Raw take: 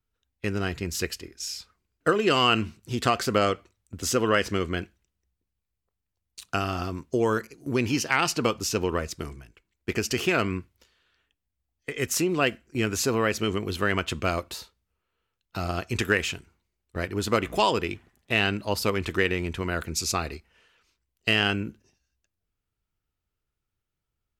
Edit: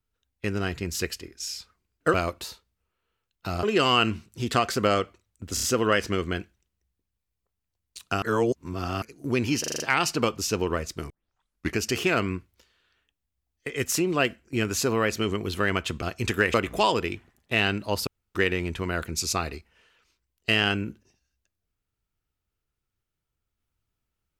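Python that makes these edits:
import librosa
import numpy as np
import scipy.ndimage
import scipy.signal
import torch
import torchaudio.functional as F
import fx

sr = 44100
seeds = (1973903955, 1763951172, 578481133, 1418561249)

y = fx.edit(x, sr, fx.stutter(start_s=4.05, slice_s=0.03, count=4),
    fx.reverse_span(start_s=6.64, length_s=0.8),
    fx.stutter(start_s=8.02, slice_s=0.04, count=6),
    fx.tape_start(start_s=9.32, length_s=0.68),
    fx.move(start_s=14.24, length_s=1.49, to_s=2.14),
    fx.cut(start_s=16.25, length_s=1.08),
    fx.room_tone_fill(start_s=18.86, length_s=0.28), tone=tone)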